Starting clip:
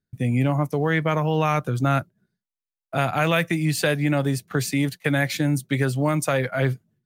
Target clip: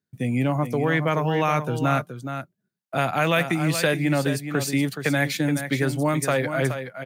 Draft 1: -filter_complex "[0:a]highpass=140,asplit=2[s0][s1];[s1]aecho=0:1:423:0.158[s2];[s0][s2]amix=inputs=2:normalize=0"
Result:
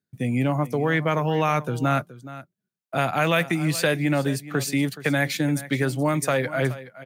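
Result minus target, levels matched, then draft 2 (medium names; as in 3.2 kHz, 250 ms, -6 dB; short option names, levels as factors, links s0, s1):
echo-to-direct -7 dB
-filter_complex "[0:a]highpass=140,asplit=2[s0][s1];[s1]aecho=0:1:423:0.355[s2];[s0][s2]amix=inputs=2:normalize=0"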